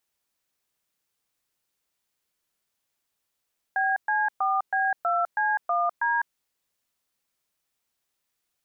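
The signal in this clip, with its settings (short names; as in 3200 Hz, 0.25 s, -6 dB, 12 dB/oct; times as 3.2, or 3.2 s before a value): DTMF "BC4B2C1D", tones 0.203 s, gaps 0.119 s, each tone -24 dBFS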